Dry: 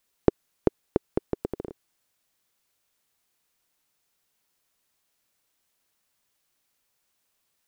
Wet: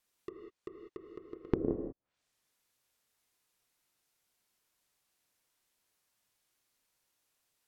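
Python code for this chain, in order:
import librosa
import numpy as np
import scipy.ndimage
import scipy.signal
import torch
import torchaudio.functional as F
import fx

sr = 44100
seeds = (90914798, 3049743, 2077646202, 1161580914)

y = fx.leveller(x, sr, passes=5)
y = fx.auto_swell(y, sr, attack_ms=481.0)
y = fx.rev_gated(y, sr, seeds[0], gate_ms=220, shape='flat', drr_db=2.0)
y = fx.env_lowpass_down(y, sr, base_hz=500.0, full_db=-42.5)
y = y * librosa.db_to_amplitude(4.5)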